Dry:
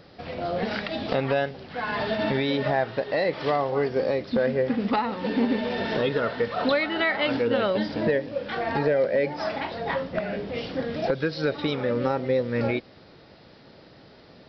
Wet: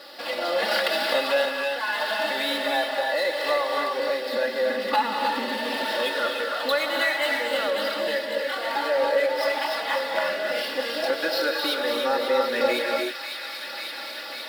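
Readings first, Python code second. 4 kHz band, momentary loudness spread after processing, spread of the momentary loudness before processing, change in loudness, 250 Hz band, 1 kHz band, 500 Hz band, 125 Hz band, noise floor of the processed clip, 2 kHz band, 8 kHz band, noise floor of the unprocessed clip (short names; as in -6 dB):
+8.0 dB, 5 LU, 7 LU, +1.0 dB, -8.0 dB, +3.5 dB, +0.5 dB, under -20 dB, -35 dBFS, +5.0 dB, n/a, -51 dBFS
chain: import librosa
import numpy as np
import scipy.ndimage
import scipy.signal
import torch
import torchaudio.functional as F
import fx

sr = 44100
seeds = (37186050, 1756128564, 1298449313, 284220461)

p1 = scipy.signal.medfilt(x, 5)
p2 = scipy.signal.sosfilt(scipy.signal.butter(2, 600.0, 'highpass', fs=sr, output='sos'), p1)
p3 = fx.high_shelf(p2, sr, hz=4000.0, db=10.5)
p4 = fx.notch(p3, sr, hz=2300.0, q=13.0)
p5 = p4 + 0.76 * np.pad(p4, (int(3.5 * sr / 1000.0), 0))[:len(p4)]
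p6 = p5 + fx.echo_wet_highpass(p5, sr, ms=544, feedback_pct=67, hz=1900.0, wet_db=-9.0, dry=0)
p7 = fx.rev_gated(p6, sr, seeds[0], gate_ms=340, shape='rising', drr_db=1.5)
p8 = 10.0 ** (-23.0 / 20.0) * np.tanh(p7 / 10.0 ** (-23.0 / 20.0))
p9 = p7 + F.gain(torch.from_numpy(p8), -10.0).numpy()
p10 = fx.rider(p9, sr, range_db=10, speed_s=2.0)
y = F.gain(torch.from_numpy(p10), -2.5).numpy()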